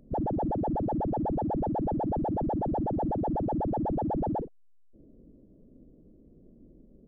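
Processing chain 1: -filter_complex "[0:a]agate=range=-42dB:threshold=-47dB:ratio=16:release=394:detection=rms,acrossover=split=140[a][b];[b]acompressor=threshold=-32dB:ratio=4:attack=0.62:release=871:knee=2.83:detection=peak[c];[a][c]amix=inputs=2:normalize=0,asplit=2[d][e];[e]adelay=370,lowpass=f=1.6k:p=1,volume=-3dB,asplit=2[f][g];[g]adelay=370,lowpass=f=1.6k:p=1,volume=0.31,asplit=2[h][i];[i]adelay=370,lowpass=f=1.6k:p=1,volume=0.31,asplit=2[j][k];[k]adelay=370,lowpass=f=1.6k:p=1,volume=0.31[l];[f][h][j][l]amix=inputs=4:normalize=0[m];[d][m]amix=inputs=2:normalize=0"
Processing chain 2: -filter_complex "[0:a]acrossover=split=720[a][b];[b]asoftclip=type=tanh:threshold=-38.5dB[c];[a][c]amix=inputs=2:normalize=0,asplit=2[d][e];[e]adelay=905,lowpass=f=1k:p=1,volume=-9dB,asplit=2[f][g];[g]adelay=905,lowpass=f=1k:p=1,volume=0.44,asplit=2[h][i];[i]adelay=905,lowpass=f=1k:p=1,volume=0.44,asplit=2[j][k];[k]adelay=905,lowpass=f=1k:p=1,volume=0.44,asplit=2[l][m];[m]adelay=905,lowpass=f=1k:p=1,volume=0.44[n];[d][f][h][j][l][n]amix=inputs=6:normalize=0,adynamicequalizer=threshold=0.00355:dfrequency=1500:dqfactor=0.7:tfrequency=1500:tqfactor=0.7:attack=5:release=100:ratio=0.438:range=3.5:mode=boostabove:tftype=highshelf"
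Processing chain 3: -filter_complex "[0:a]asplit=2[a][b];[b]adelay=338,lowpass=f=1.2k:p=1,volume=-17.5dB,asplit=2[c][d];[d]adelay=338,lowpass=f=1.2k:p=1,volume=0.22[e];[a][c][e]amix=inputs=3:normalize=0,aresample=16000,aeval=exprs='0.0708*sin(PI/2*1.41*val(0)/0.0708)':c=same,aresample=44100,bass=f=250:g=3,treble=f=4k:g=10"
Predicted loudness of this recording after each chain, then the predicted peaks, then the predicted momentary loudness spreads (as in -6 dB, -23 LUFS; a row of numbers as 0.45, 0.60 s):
-32.5, -31.5, -25.0 LUFS; -20.5, -22.0, -20.0 dBFS; 6, 17, 2 LU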